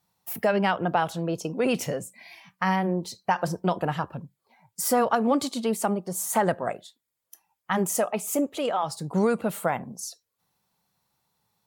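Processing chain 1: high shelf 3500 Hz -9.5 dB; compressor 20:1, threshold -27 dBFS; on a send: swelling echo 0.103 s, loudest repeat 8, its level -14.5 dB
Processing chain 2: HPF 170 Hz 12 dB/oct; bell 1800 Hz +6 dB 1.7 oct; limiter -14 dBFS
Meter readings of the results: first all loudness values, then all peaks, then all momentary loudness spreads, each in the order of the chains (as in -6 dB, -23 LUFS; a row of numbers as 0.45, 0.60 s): -33.0, -27.0 LUFS; -14.5, -14.0 dBFS; 7, 12 LU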